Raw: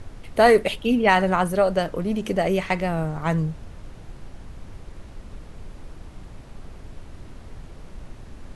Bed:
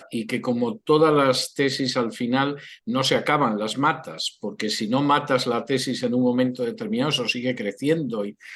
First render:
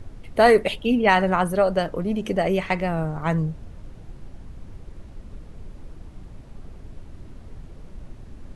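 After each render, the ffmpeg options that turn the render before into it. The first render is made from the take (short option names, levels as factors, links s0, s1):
-af "afftdn=nr=6:nf=-44"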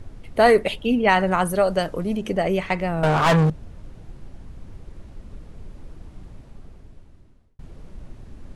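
-filter_complex "[0:a]asettb=1/sr,asplit=3[s0][s1][s2];[s0]atrim=end=1.314[s3];[s1]atrim=start=1.31:end=2.17,asetpts=PTS-STARTPTS,afade=t=in:d=0.004:c=qsin,afade=t=out:st=0.856:d=0.004:c=qsin,highshelf=f=4300:g=8[s4];[s2]atrim=start=2.166[s5];[s3][s4]acrossfade=d=0.004:c1=hsin:c2=qsin[s6];[s6][s5]acrossfade=d=0.004:c1=qsin:c2=hsin,asettb=1/sr,asplit=3[s7][s8][s9];[s7]atrim=end=3.034[s10];[s8]atrim=start=3.03:end=3.5,asetpts=PTS-STARTPTS,afade=t=in:d=0.004:c=qsin,afade=t=out:st=0.466:d=0.004:c=qsin,asplit=2[s11][s12];[s12]highpass=f=720:p=1,volume=35.5,asoftclip=type=tanh:threshold=0.355[s13];[s11][s13]amix=inputs=2:normalize=0,lowpass=f=5100:p=1,volume=0.501[s14];[s9]atrim=start=3.496[s15];[s10][s14]acrossfade=d=0.004:c1=hsin:c2=qsin[s16];[s16][s15]acrossfade=d=0.004:c1=qsin:c2=hsin,asplit=2[s17][s18];[s17]atrim=end=7.59,asetpts=PTS-STARTPTS,afade=t=out:st=6.28:d=1.31[s19];[s18]atrim=start=7.59,asetpts=PTS-STARTPTS,afade=t=in:d=0.004:c=hsin[s20];[s19][s20]concat=n=2:v=0:a=1"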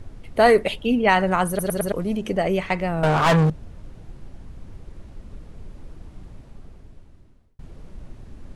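-filter_complex "[0:a]asplit=5[s0][s1][s2][s3][s4];[s0]atrim=end=1.592[s5];[s1]atrim=start=1.478:end=1.592[s6];[s2]atrim=start=1.478:end=1.592[s7];[s3]atrim=start=1.478:end=1.592[s8];[s4]atrim=start=1.918[s9];[s5][s6]acrossfade=d=0.004:c1=hsin:c2=hsin[s10];[s10][s7]acrossfade=d=0.004:c1=hsin:c2=hsin[s11];[s11][s8]acrossfade=d=0.004:c1=hsin:c2=hsin[s12];[s12][s9]acrossfade=d=0.004:c1=hsin:c2=hsin"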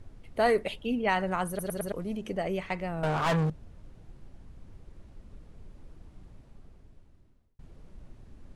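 -af "volume=0.335"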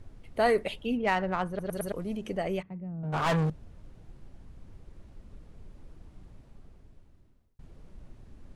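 -filter_complex "[0:a]asettb=1/sr,asplit=3[s0][s1][s2];[s0]atrim=end=0.974[s3];[s1]atrim=start=0.97:end=1.73,asetpts=PTS-STARTPTS,afade=t=in:d=0.004:c=qsin,afade=t=out:st=0.756:d=0.004:c=qsin,adynamicsmooth=sensitivity=4:basefreq=3000[s4];[s2]atrim=start=1.726[s5];[s3][s4]acrossfade=d=0.004:c1=hsin:c2=qsin[s6];[s6][s5]acrossfade=d=0.004:c1=qsin:c2=hsin,asplit=3[s7][s8][s9];[s7]afade=t=out:st=2.61:d=0.02[s10];[s8]bandpass=f=180:t=q:w=2.2,afade=t=in:st=2.61:d=0.02,afade=t=out:st=3.12:d=0.02[s11];[s9]afade=t=in:st=3.12:d=0.02[s12];[s10][s11][s12]amix=inputs=3:normalize=0"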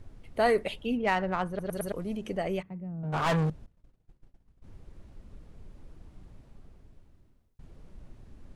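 -filter_complex "[0:a]asettb=1/sr,asplit=3[s0][s1][s2];[s0]atrim=end=3.664[s3];[s1]atrim=start=3.66:end=4.64,asetpts=PTS-STARTPTS,afade=t=in:d=0.004:c=qsin,afade=t=out:st=0.976:d=0.004:c=qsin,agate=range=0.0224:threshold=0.0141:ratio=3:release=100:detection=peak[s4];[s2]atrim=start=4.636[s5];[s3][s4]acrossfade=d=0.004:c1=hsin:c2=qsin[s6];[s6][s5]acrossfade=d=0.004:c1=qsin:c2=hsin"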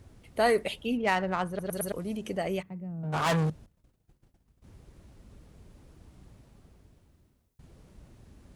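-af "highpass=45,highshelf=f=4900:g=8.5"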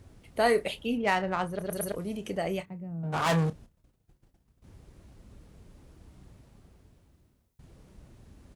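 -filter_complex "[0:a]asplit=2[s0][s1];[s1]adelay=30,volume=0.237[s2];[s0][s2]amix=inputs=2:normalize=0"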